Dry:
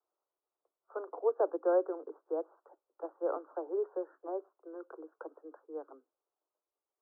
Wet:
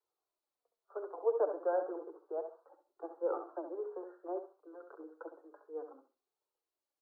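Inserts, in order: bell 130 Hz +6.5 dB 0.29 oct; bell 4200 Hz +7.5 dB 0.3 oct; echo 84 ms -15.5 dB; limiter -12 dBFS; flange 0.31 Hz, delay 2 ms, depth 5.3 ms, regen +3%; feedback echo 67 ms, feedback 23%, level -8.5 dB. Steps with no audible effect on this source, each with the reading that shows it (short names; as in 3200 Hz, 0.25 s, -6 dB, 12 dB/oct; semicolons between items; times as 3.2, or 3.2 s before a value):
bell 130 Hz: input band starts at 270 Hz; bell 4200 Hz: input band ends at 1400 Hz; limiter -12 dBFS: input peak -19.0 dBFS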